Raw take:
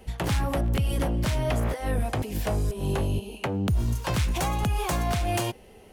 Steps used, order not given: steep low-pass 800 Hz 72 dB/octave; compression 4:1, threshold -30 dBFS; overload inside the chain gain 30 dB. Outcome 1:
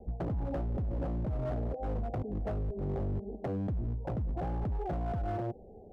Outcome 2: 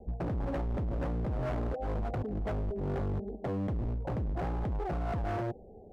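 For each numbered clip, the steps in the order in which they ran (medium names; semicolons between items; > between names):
steep low-pass > compression > overload inside the chain; steep low-pass > overload inside the chain > compression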